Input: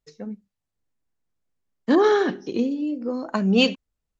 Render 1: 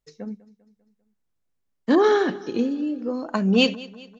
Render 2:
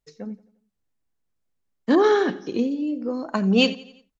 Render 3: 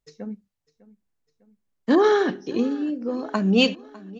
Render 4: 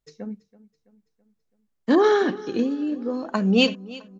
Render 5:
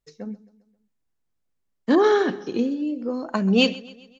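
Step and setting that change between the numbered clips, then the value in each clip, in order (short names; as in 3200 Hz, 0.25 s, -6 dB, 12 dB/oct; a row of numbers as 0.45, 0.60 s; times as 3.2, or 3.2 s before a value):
feedback echo, time: 198, 87, 602, 330, 133 ms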